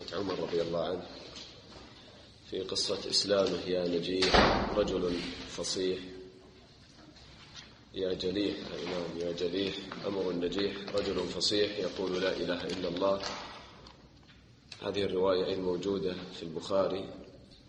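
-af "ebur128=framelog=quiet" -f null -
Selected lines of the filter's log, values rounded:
Integrated loudness:
  I:         -32.0 LUFS
  Threshold: -43.2 LUFS
Loudness range:
  LRA:         7.9 LU
  Threshold: -53.0 LUFS
  LRA low:   -37.2 LUFS
  LRA high:  -29.3 LUFS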